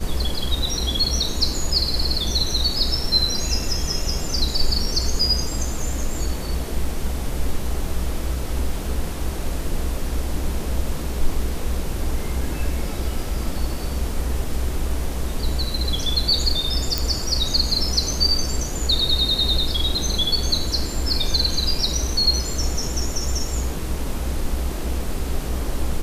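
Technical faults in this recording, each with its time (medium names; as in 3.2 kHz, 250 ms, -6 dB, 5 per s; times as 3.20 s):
16.98 s: pop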